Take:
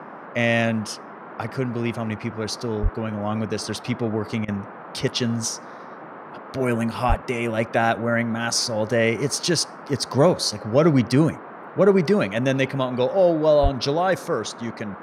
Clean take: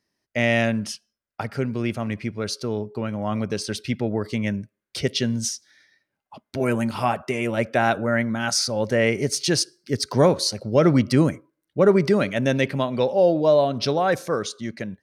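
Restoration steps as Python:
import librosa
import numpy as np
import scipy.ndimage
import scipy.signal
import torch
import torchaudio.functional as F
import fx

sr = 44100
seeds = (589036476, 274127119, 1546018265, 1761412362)

y = fx.highpass(x, sr, hz=140.0, slope=24, at=(2.82, 2.94), fade=0.02)
y = fx.highpass(y, sr, hz=140.0, slope=24, at=(7.08, 7.2), fade=0.02)
y = fx.highpass(y, sr, hz=140.0, slope=24, at=(13.62, 13.74), fade=0.02)
y = fx.fix_interpolate(y, sr, at_s=(4.45,), length_ms=31.0)
y = fx.noise_reduce(y, sr, print_start_s=5.82, print_end_s=6.32, reduce_db=30.0)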